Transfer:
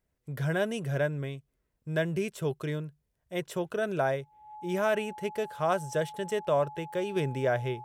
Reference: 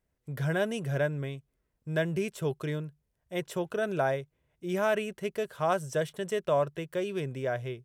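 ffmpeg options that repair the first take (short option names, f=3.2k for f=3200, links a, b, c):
-af "bandreject=f=850:w=30,asetnsamples=n=441:p=0,asendcmd='7.16 volume volume -4dB',volume=0dB"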